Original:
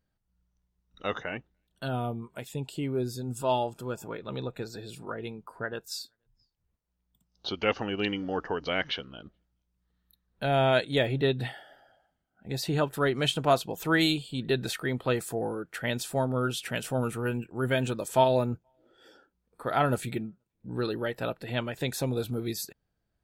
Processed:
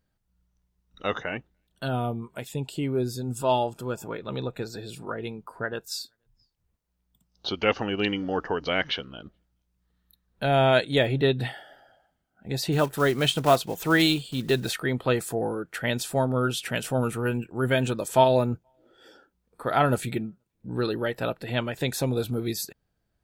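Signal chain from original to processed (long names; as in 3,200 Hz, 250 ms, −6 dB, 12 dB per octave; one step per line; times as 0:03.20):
0:12.72–0:14.74: one scale factor per block 5 bits
level +3.5 dB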